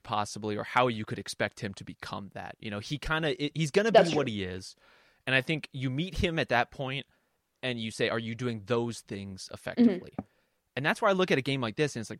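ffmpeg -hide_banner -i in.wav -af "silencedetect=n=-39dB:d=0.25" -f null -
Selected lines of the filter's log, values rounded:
silence_start: 4.71
silence_end: 5.27 | silence_duration: 0.57
silence_start: 7.02
silence_end: 7.63 | silence_duration: 0.62
silence_start: 10.21
silence_end: 10.77 | silence_duration: 0.56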